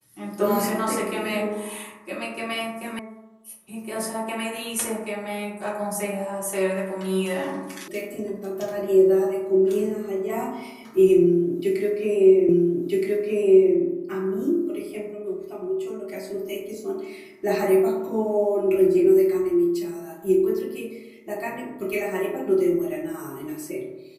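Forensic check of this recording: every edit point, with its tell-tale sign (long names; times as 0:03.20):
0:02.99: cut off before it has died away
0:07.88: cut off before it has died away
0:12.49: the same again, the last 1.27 s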